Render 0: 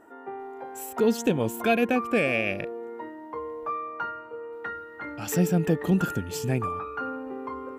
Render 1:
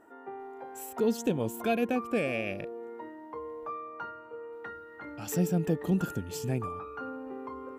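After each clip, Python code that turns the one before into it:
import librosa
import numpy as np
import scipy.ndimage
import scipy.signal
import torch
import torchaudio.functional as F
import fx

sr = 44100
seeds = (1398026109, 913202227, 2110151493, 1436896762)

y = fx.dynamic_eq(x, sr, hz=1900.0, q=0.85, threshold_db=-42.0, ratio=4.0, max_db=-5)
y = F.gain(torch.from_numpy(y), -4.5).numpy()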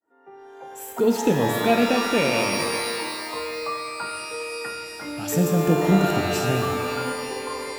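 y = fx.fade_in_head(x, sr, length_s=1.1)
y = fx.hum_notches(y, sr, base_hz=50, count=2)
y = fx.rev_shimmer(y, sr, seeds[0], rt60_s=2.0, semitones=12, shimmer_db=-2, drr_db=4.5)
y = F.gain(torch.from_numpy(y), 7.0).numpy()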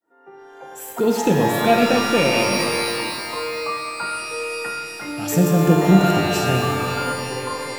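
y = fx.room_shoebox(x, sr, seeds[1], volume_m3=1700.0, walls='mixed', distance_m=0.85)
y = F.gain(torch.from_numpy(y), 2.5).numpy()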